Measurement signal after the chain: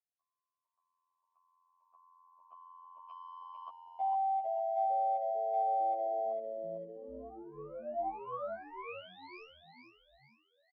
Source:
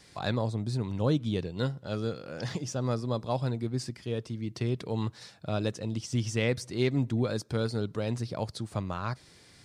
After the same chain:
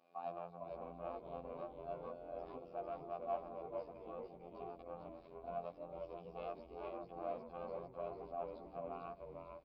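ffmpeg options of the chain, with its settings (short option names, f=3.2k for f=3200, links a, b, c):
-filter_complex "[0:a]tiltshelf=f=1.3k:g=7.5,aresample=11025,asoftclip=type=tanh:threshold=-25dB,aresample=44100,afreqshift=82,asplit=3[a][b][c];[a]bandpass=f=730:t=q:w=8,volume=0dB[d];[b]bandpass=f=1.09k:t=q:w=8,volume=-6dB[e];[c]bandpass=f=2.44k:t=q:w=8,volume=-9dB[f];[d][e][f]amix=inputs=3:normalize=0,afftfilt=real='hypot(re,im)*cos(PI*b)':imag='0':win_size=2048:overlap=0.75,asplit=2[g][h];[h]asplit=5[i][j][k][l][m];[i]adelay=450,afreqshift=-110,volume=-4.5dB[n];[j]adelay=900,afreqshift=-220,volume=-11.8dB[o];[k]adelay=1350,afreqshift=-330,volume=-19.2dB[p];[l]adelay=1800,afreqshift=-440,volume=-26.5dB[q];[m]adelay=2250,afreqshift=-550,volume=-33.8dB[r];[n][o][p][q][r]amix=inputs=5:normalize=0[s];[g][s]amix=inputs=2:normalize=0"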